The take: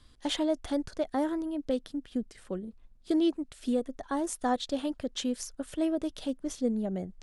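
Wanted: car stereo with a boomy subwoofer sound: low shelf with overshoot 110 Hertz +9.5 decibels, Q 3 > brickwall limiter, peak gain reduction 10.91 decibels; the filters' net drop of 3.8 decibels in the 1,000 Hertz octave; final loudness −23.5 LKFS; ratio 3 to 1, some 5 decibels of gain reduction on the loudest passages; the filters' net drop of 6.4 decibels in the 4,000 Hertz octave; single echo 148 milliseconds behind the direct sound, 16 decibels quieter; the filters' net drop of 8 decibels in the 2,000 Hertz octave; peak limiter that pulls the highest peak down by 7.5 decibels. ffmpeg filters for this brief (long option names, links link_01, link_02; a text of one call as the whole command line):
ffmpeg -i in.wav -af "equalizer=frequency=1000:width_type=o:gain=-3.5,equalizer=frequency=2000:width_type=o:gain=-8,equalizer=frequency=4000:width_type=o:gain=-5,acompressor=threshold=-30dB:ratio=3,alimiter=level_in=4.5dB:limit=-24dB:level=0:latency=1,volume=-4.5dB,lowshelf=frequency=110:width_type=q:width=3:gain=9.5,aecho=1:1:148:0.158,volume=20.5dB,alimiter=limit=-14dB:level=0:latency=1" out.wav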